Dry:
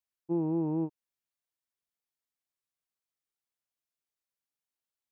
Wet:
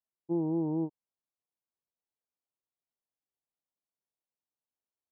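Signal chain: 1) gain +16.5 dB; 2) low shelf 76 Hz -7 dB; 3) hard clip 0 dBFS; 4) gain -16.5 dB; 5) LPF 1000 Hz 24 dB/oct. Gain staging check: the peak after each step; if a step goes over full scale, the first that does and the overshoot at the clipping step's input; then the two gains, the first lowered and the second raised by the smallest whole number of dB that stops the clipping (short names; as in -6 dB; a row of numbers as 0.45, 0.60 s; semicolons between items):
-5.0, -5.0, -5.0, -21.5, -21.5 dBFS; no overload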